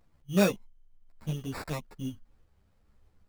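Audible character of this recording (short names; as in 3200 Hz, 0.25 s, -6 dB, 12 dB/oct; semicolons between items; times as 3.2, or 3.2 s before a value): aliases and images of a low sample rate 3100 Hz, jitter 0%; a shimmering, thickened sound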